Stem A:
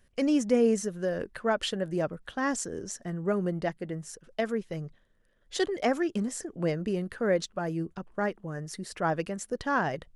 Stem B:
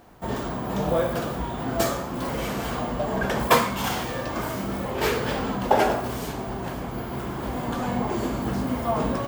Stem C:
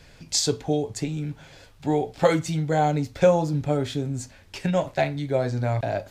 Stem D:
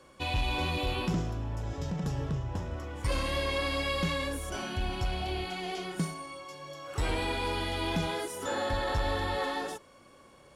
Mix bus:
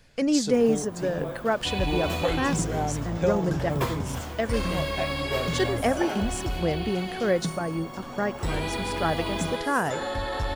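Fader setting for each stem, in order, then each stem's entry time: +2.0 dB, -12.5 dB, -8.0 dB, +1.0 dB; 0.00 s, 0.30 s, 0.00 s, 1.45 s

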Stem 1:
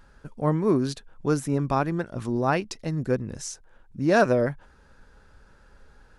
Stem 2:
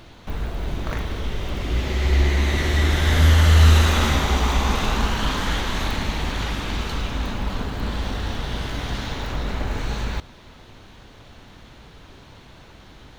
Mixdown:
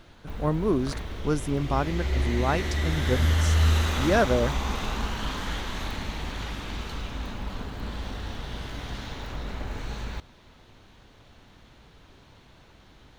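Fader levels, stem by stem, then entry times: -2.5 dB, -8.0 dB; 0.00 s, 0.00 s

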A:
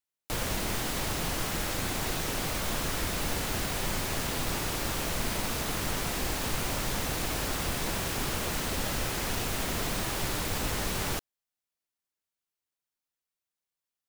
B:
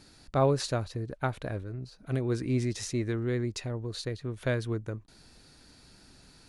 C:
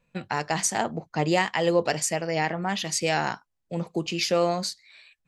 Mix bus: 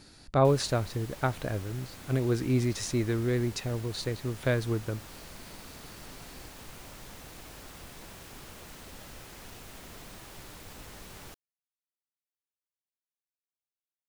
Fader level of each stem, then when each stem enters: -15.5 dB, +2.0 dB, mute; 0.15 s, 0.00 s, mute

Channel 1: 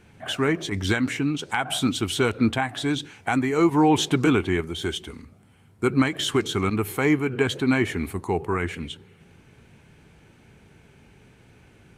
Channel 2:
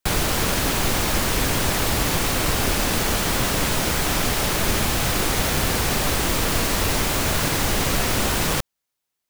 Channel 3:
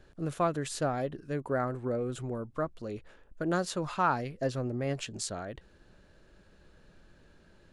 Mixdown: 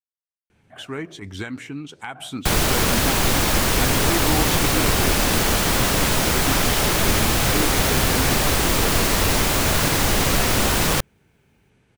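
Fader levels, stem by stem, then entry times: -8.0 dB, +2.5 dB, mute; 0.50 s, 2.40 s, mute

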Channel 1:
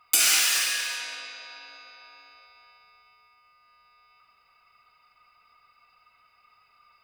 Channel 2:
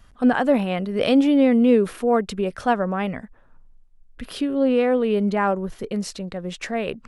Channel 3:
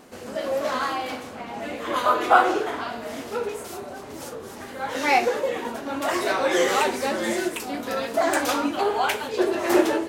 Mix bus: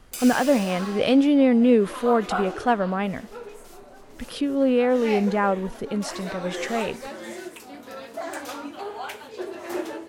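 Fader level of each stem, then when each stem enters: -14.5 dB, -1.0 dB, -11.0 dB; 0.00 s, 0.00 s, 0.00 s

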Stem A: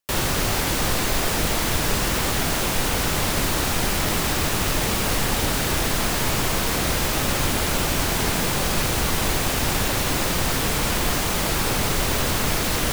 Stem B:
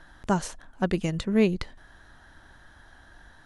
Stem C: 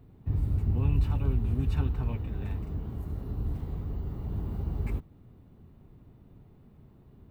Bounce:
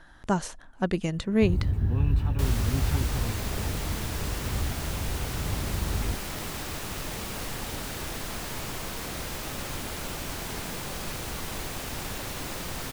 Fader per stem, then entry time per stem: -12.5 dB, -1.0 dB, +1.5 dB; 2.30 s, 0.00 s, 1.15 s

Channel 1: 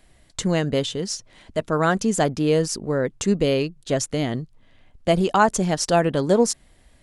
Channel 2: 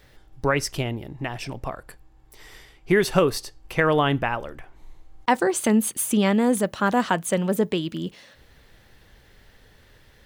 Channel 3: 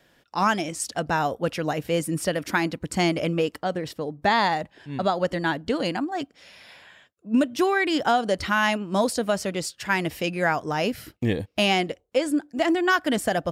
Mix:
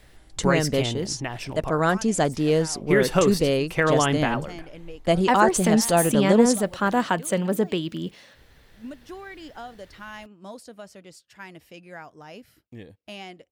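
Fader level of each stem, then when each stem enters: -1.5 dB, -1.0 dB, -18.0 dB; 0.00 s, 0.00 s, 1.50 s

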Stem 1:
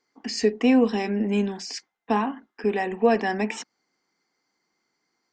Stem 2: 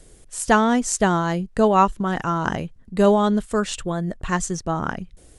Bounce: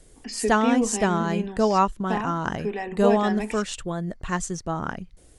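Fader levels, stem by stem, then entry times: -5.0 dB, -4.0 dB; 0.00 s, 0.00 s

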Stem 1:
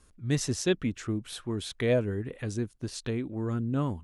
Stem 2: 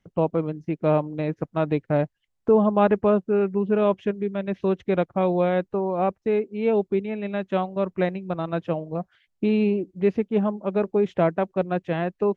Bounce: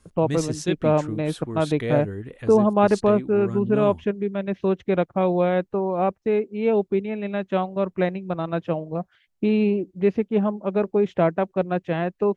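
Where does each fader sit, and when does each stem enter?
-0.5 dB, +1.0 dB; 0.00 s, 0.00 s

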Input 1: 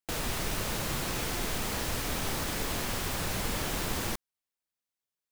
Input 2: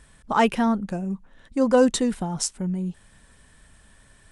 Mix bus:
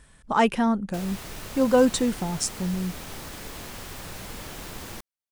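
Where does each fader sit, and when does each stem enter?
-6.0 dB, -1.0 dB; 0.85 s, 0.00 s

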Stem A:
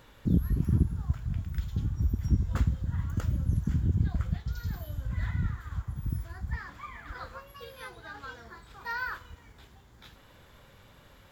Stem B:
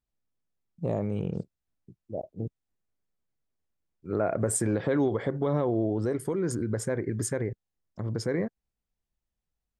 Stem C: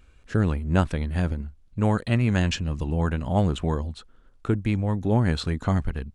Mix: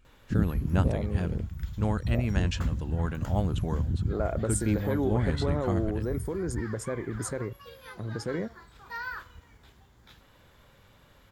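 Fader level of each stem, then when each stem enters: -2.5 dB, -3.5 dB, -7.0 dB; 0.05 s, 0.00 s, 0.00 s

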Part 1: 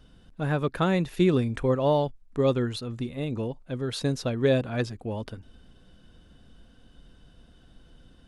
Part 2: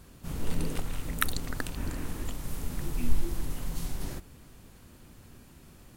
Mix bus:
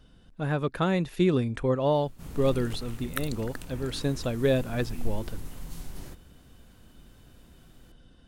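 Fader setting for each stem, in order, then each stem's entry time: -1.5 dB, -5.5 dB; 0.00 s, 1.95 s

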